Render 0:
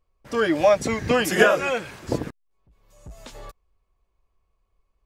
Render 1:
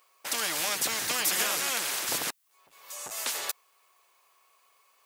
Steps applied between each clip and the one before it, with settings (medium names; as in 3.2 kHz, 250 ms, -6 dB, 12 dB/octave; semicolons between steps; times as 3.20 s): high-pass 980 Hz 12 dB/octave; treble shelf 6.9 kHz +9.5 dB; spectrum-flattening compressor 4:1; trim -9 dB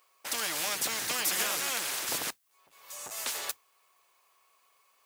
modulation noise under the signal 16 dB; trim -2.5 dB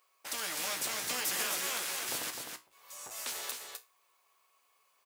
feedback comb 62 Hz, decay 0.24 s, harmonics all, mix 70%; delay 256 ms -5.5 dB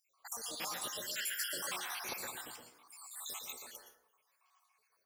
random holes in the spectrogram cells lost 74%; in parallel at -10 dB: saturation -33 dBFS, distortion -17 dB; on the sum: plate-style reverb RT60 0.71 s, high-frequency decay 0.35×, pre-delay 105 ms, DRR 3 dB; trim -2.5 dB